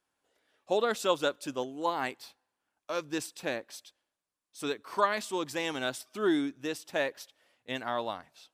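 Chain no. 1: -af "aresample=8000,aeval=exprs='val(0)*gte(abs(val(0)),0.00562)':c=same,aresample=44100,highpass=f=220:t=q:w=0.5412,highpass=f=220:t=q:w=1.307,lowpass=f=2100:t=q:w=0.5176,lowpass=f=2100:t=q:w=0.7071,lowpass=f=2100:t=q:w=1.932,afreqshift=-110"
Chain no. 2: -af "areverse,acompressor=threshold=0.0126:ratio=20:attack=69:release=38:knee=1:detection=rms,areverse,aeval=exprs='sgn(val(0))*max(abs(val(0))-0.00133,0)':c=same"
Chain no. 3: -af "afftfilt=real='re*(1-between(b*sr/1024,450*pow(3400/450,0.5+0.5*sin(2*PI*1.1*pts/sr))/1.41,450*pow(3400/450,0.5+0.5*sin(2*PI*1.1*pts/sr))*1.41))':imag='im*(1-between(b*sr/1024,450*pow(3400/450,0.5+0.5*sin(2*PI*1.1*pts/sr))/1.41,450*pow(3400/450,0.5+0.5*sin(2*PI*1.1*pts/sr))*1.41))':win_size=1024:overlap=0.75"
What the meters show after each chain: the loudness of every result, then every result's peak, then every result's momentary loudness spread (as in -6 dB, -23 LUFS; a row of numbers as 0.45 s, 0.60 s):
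-33.5 LUFS, -39.5 LUFS, -34.0 LUFS; -12.0 dBFS, -21.5 dBFS, -14.0 dBFS; 10 LU, 13 LU, 19 LU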